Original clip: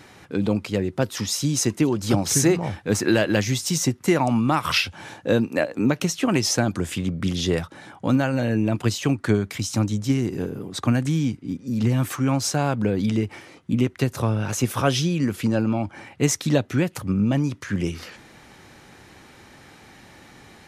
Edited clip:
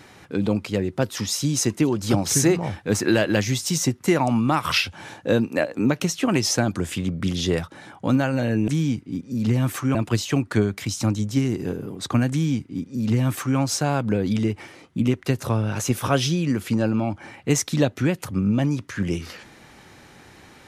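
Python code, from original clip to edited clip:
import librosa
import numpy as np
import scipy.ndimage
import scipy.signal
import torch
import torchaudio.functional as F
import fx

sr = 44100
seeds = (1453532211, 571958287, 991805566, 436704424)

y = fx.edit(x, sr, fx.duplicate(start_s=11.04, length_s=1.27, to_s=8.68), tone=tone)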